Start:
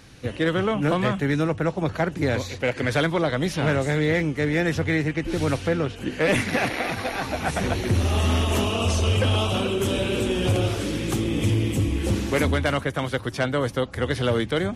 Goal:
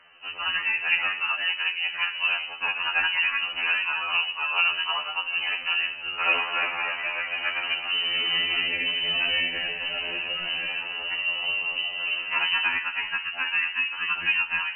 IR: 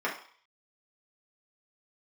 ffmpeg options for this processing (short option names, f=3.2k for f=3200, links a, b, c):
-filter_complex "[0:a]lowshelf=f=220:g=-7.5,asplit=2[a][b];[1:a]atrim=start_sample=2205,asetrate=28665,aresample=44100[c];[b][c]afir=irnorm=-1:irlink=0,volume=-13.5dB[d];[a][d]amix=inputs=2:normalize=0,lowpass=f=2.6k:t=q:w=0.5098,lowpass=f=2.6k:t=q:w=0.6013,lowpass=f=2.6k:t=q:w=0.9,lowpass=f=2.6k:t=q:w=2.563,afreqshift=-3100,afftfilt=real='re*2*eq(mod(b,4),0)':imag='im*2*eq(mod(b,4),0)':win_size=2048:overlap=0.75,volume=-1.5dB"